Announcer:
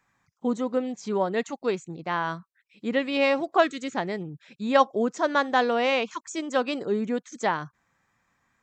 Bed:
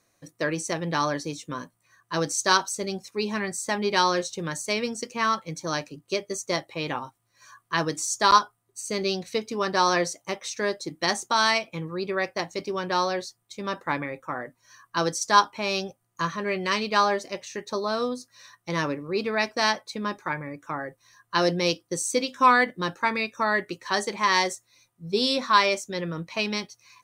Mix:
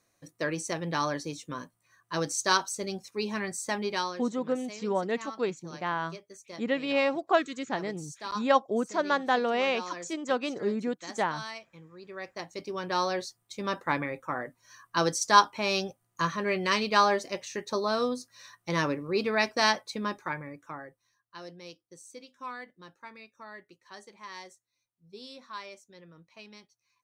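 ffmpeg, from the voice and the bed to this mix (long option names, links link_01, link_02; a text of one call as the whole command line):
ffmpeg -i stem1.wav -i stem2.wav -filter_complex "[0:a]adelay=3750,volume=-3.5dB[link_01];[1:a]volume=13dB,afade=type=out:start_time=3.75:duration=0.45:silence=0.199526,afade=type=in:start_time=12.03:duration=1.39:silence=0.141254,afade=type=out:start_time=19.81:duration=1.4:silence=0.0891251[link_02];[link_01][link_02]amix=inputs=2:normalize=0" out.wav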